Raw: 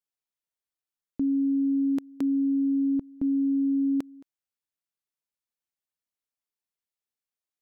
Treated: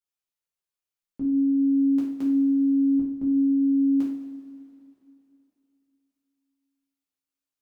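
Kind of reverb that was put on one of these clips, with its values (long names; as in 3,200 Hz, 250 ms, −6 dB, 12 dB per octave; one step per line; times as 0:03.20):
coupled-rooms reverb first 0.53 s, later 3.1 s, from −16 dB, DRR −6.5 dB
level −7 dB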